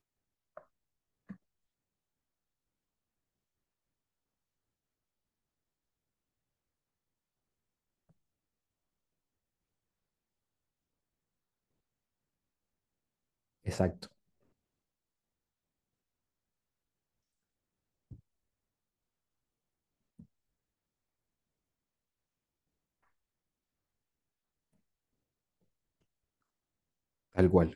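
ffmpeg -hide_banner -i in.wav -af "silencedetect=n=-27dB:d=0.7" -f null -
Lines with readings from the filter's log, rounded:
silence_start: 0.00
silence_end: 13.69 | silence_duration: 13.69
silence_start: 13.87
silence_end: 27.38 | silence_duration: 13.51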